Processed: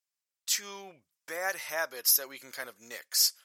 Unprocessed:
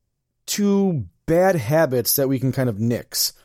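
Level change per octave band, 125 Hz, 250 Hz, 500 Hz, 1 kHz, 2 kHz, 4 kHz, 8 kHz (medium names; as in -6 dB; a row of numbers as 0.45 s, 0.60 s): under -40 dB, -34.0 dB, -21.0 dB, -13.5 dB, -5.0 dB, -3.5 dB, -3.5 dB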